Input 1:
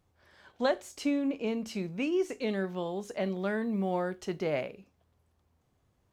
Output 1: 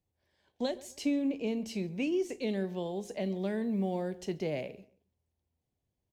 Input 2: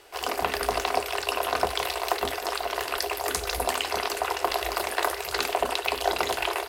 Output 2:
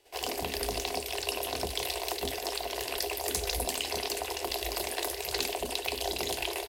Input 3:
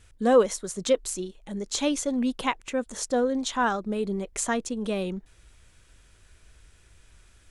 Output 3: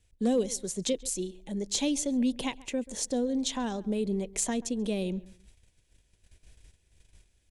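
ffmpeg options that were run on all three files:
-filter_complex "[0:a]agate=range=-12dB:threshold=-52dB:ratio=16:detection=peak,equalizer=frequency=1300:width=2.2:gain=-14,acrossover=split=360|3000[link_01][link_02][link_03];[link_02]acompressor=threshold=-34dB:ratio=10[link_04];[link_01][link_04][link_03]amix=inputs=3:normalize=0,asoftclip=type=hard:threshold=-18.5dB,asplit=2[link_05][link_06];[link_06]adelay=135,lowpass=frequency=2500:poles=1,volume=-20dB,asplit=2[link_07][link_08];[link_08]adelay=135,lowpass=frequency=2500:poles=1,volume=0.3[link_09];[link_05][link_07][link_09]amix=inputs=3:normalize=0"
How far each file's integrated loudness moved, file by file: −1.5, −4.5, −4.0 LU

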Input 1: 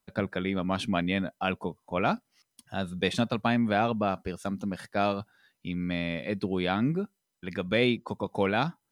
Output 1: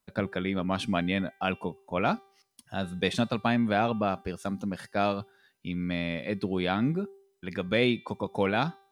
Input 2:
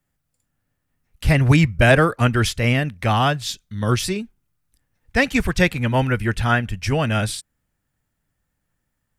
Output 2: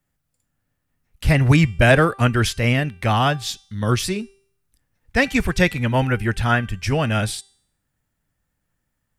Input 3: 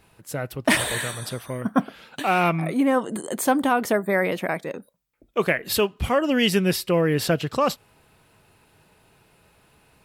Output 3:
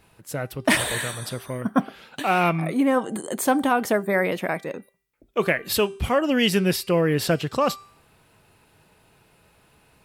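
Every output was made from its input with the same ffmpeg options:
-af "bandreject=frequency=392.3:width_type=h:width=4,bandreject=frequency=784.6:width_type=h:width=4,bandreject=frequency=1176.9:width_type=h:width=4,bandreject=frequency=1569.2:width_type=h:width=4,bandreject=frequency=1961.5:width_type=h:width=4,bandreject=frequency=2353.8:width_type=h:width=4,bandreject=frequency=2746.1:width_type=h:width=4,bandreject=frequency=3138.4:width_type=h:width=4,bandreject=frequency=3530.7:width_type=h:width=4,bandreject=frequency=3923:width_type=h:width=4,bandreject=frequency=4315.3:width_type=h:width=4,bandreject=frequency=4707.6:width_type=h:width=4,bandreject=frequency=5099.9:width_type=h:width=4,bandreject=frequency=5492.2:width_type=h:width=4,bandreject=frequency=5884.5:width_type=h:width=4,bandreject=frequency=6276.8:width_type=h:width=4,bandreject=frequency=6669.1:width_type=h:width=4,bandreject=frequency=7061.4:width_type=h:width=4,bandreject=frequency=7453.7:width_type=h:width=4,bandreject=frequency=7846:width_type=h:width=4,bandreject=frequency=8238.3:width_type=h:width=4,bandreject=frequency=8630.6:width_type=h:width=4,bandreject=frequency=9022.9:width_type=h:width=4,bandreject=frequency=9415.2:width_type=h:width=4,bandreject=frequency=9807.5:width_type=h:width=4,bandreject=frequency=10199.8:width_type=h:width=4"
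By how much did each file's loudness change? 0.0, 0.0, 0.0 LU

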